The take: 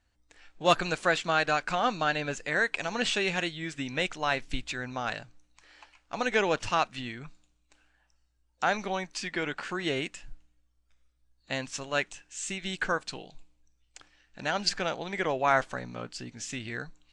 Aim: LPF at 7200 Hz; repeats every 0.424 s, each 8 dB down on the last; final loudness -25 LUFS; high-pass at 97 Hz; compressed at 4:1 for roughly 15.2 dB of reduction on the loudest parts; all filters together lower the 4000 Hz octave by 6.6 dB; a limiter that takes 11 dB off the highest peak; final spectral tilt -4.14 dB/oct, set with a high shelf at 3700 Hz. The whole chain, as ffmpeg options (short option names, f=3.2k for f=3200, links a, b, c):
-af "highpass=97,lowpass=7.2k,highshelf=f=3.7k:g=-4,equalizer=f=4k:t=o:g=-6,acompressor=threshold=-37dB:ratio=4,alimiter=level_in=7.5dB:limit=-24dB:level=0:latency=1,volume=-7.5dB,aecho=1:1:424|848|1272|1696|2120:0.398|0.159|0.0637|0.0255|0.0102,volume=18dB"